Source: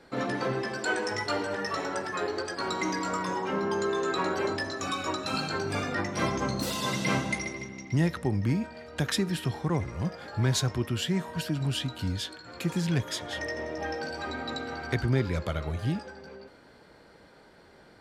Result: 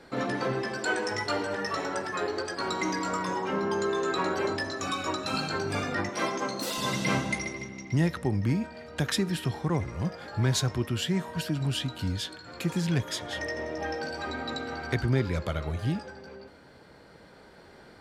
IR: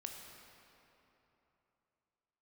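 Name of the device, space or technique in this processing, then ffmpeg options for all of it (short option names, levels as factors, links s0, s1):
ducked reverb: -filter_complex "[0:a]asettb=1/sr,asplit=3[s0][s1][s2];[s0]atrim=end=6.094[s3];[s1]atrim=start=6.09:end=6.78,asetpts=PTS-STARTPTS,afade=t=in:d=0.004:c=qsin,afade=t=out:st=0.686:d=0.004:c=qsin,highpass=290[s4];[s2]atrim=start=6.776[s5];[s3][s4]acrossfade=d=0.004:c1=hsin:c2=qsin[s6];[s6][s5]acrossfade=d=0.004:c1=qsin:c2=hsin,asplit=3[s7][s8][s9];[1:a]atrim=start_sample=2205[s10];[s8][s10]afir=irnorm=-1:irlink=0[s11];[s9]apad=whole_len=793868[s12];[s11][s12]sidechaincompress=threshold=0.00447:ratio=8:attack=16:release=1140,volume=0.794[s13];[s7][s13]amix=inputs=2:normalize=0"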